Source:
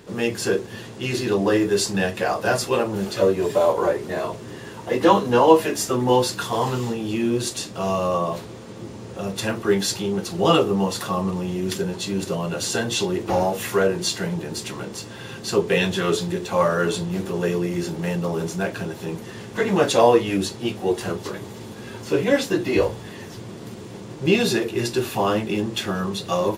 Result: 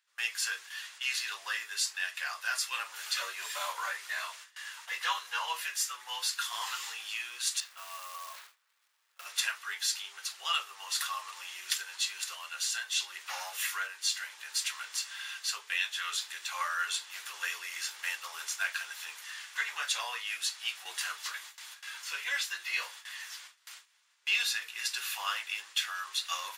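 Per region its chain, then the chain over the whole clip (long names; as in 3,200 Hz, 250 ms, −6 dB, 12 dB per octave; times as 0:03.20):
0:07.60–0:09.26: low-pass filter 1,300 Hz 6 dB per octave + floating-point word with a short mantissa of 2 bits + downward compressor, threshold −26 dBFS
whole clip: high-pass filter 1,400 Hz 24 dB per octave; noise gate with hold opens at −36 dBFS; speech leveller within 4 dB 0.5 s; level −3 dB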